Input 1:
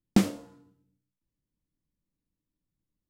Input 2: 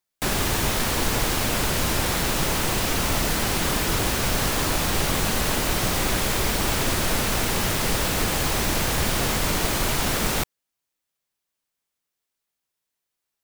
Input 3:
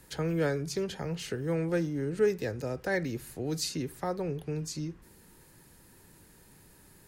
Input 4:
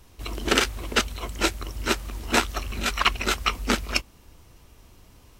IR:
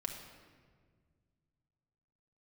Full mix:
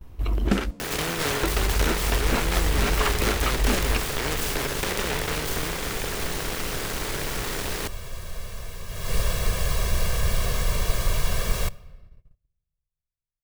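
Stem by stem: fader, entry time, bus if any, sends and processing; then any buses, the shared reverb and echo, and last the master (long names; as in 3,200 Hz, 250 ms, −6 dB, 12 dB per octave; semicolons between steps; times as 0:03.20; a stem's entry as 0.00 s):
−6.5 dB, 0.35 s, send −14 dB, no processing
0:08.87 −21.5 dB → 0:09.14 −10 dB, 1.25 s, send −14 dB, comb filter 1.8 ms, depth 83%
−1.0 dB, 0.80 s, no send, compressor on every frequency bin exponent 0.2; low-shelf EQ 390 Hz −11 dB; short delay modulated by noise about 1,300 Hz, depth 0.38 ms
+2.5 dB, 0.00 s, muted 0:00.71–0:01.43, no send, parametric band 6,800 Hz −12.5 dB 2.6 octaves; downward compressor 4 to 1, threshold −28 dBFS, peak gain reduction 9.5 dB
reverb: on, RT60 1.8 s, pre-delay 4 ms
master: noise gate −55 dBFS, range −23 dB; low-shelf EQ 110 Hz +10.5 dB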